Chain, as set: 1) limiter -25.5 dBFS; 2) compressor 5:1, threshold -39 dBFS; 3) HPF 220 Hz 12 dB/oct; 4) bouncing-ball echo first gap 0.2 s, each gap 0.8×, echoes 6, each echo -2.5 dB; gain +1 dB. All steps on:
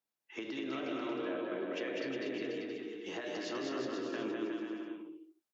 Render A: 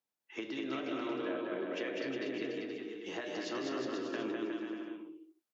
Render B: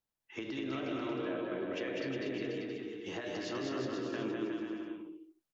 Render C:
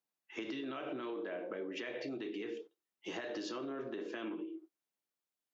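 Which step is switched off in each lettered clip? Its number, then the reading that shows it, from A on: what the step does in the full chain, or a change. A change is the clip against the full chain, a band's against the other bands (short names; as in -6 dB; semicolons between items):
1, mean gain reduction 2.5 dB; 3, 125 Hz band +8.5 dB; 4, loudness change -3.5 LU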